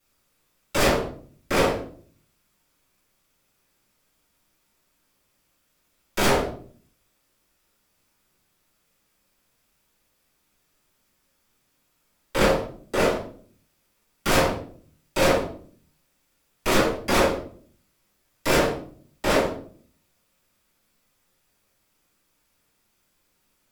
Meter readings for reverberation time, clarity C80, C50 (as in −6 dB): 0.50 s, 11.5 dB, 6.0 dB